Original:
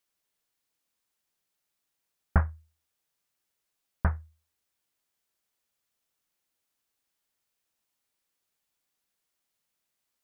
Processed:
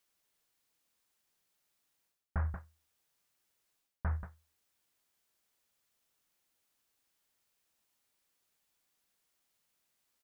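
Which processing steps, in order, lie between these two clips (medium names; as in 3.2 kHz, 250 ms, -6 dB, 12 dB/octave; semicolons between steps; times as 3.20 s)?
delay 183 ms -22.5 dB; reverse; compression 8:1, threshold -34 dBFS, peak gain reduction 17 dB; reverse; trim +2.5 dB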